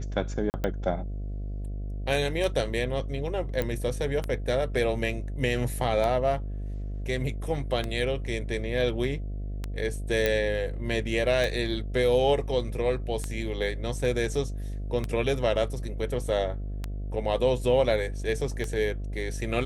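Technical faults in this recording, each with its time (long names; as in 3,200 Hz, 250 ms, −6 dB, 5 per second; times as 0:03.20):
mains buzz 50 Hz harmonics 14 −33 dBFS
scratch tick 33 1/3 rpm −16 dBFS
0:00.50–0:00.54: drop-out 39 ms
0:03.62: click −15 dBFS
0:10.26: click −11 dBFS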